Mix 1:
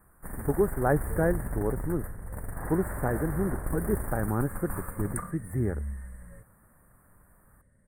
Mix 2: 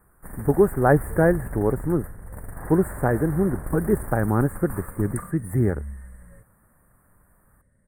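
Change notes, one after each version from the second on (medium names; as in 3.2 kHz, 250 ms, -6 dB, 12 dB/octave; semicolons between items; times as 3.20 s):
speech +7.5 dB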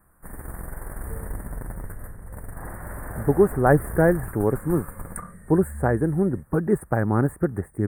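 speech: entry +2.80 s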